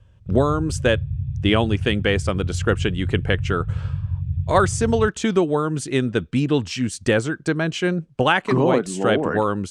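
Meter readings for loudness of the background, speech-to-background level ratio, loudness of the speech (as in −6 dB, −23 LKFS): −27.5 LKFS, 6.0 dB, −21.5 LKFS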